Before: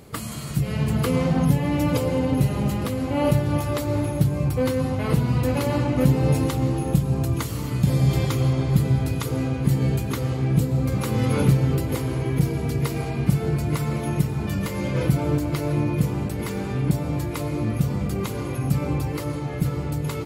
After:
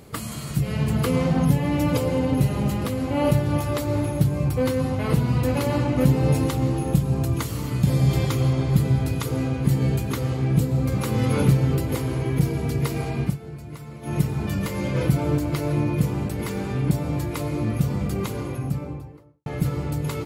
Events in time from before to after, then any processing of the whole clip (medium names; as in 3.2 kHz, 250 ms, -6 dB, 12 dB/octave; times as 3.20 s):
13.22–14.16 s: dip -13.5 dB, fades 0.15 s
18.18–19.46 s: studio fade out